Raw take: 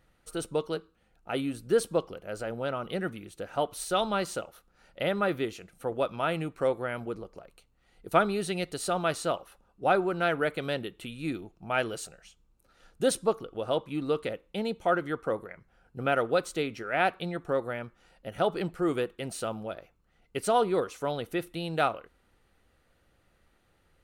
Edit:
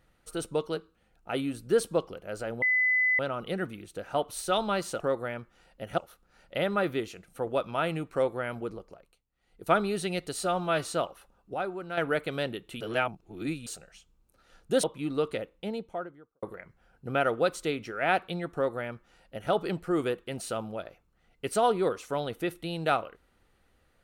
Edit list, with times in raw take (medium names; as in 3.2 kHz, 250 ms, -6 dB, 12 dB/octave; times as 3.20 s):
2.62 s: add tone 2.01 kHz -21.5 dBFS 0.57 s
7.21–8.24 s: dip -16.5 dB, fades 0.49 s
8.86–9.15 s: stretch 1.5×
9.85–10.28 s: gain -8.5 dB
11.11–11.97 s: reverse
13.14–13.75 s: delete
14.26–15.34 s: studio fade out
17.45–18.43 s: copy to 4.43 s